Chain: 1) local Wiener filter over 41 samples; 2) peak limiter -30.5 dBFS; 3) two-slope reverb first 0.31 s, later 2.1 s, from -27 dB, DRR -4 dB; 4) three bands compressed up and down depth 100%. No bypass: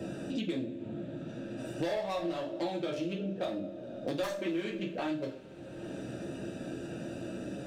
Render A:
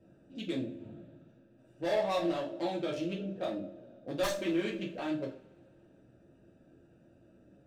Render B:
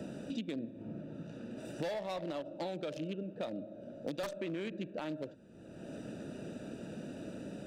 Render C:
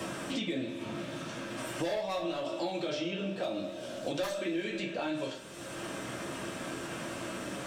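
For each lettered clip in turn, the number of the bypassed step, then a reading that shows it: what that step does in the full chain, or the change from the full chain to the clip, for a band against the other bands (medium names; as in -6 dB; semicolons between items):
4, crest factor change +2.5 dB; 3, loudness change -5.0 LU; 1, 8 kHz band +8.0 dB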